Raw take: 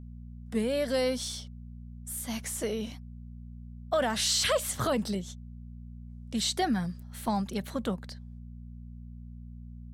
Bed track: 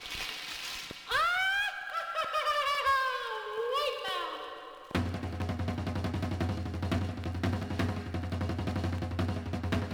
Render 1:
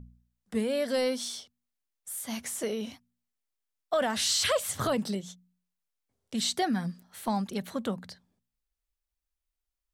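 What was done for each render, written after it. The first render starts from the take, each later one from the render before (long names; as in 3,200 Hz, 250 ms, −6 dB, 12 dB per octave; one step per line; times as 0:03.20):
hum removal 60 Hz, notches 4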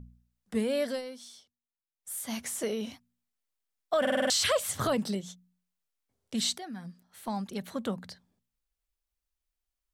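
0:00.85–0:02.12: duck −13 dB, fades 0.17 s
0:04.00: stutter in place 0.05 s, 6 plays
0:06.58–0:08.07: fade in linear, from −15.5 dB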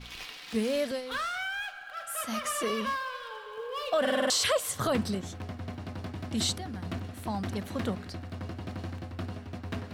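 mix in bed track −5 dB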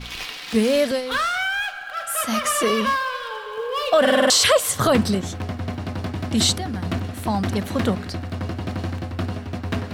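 level +10.5 dB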